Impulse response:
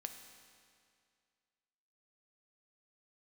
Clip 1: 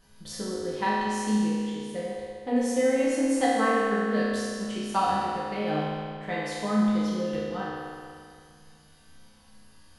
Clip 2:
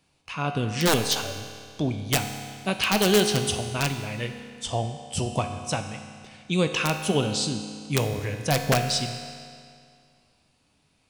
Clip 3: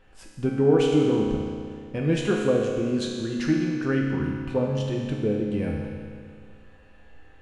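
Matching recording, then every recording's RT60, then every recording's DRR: 2; 2.2, 2.2, 2.2 s; -9.0, 5.5, -2.5 dB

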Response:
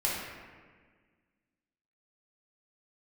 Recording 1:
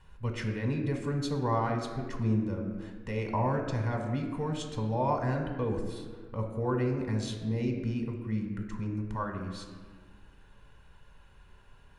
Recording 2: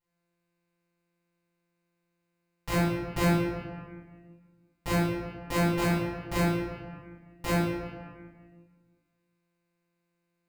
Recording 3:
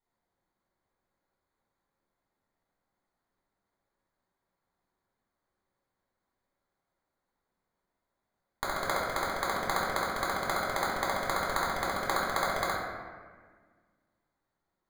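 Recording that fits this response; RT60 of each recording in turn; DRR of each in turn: 3; 1.6, 1.6, 1.6 s; 3.0, -12.0, -6.0 dB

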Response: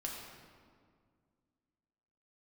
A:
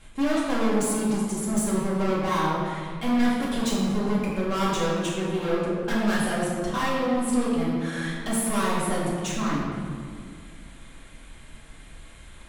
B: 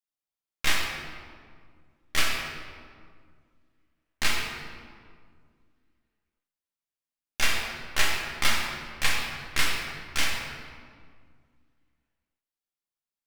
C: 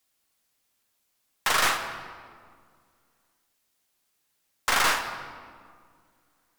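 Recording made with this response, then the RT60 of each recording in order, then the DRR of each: B; 2.0, 2.0, 2.0 s; -7.5, -2.5, 5.5 dB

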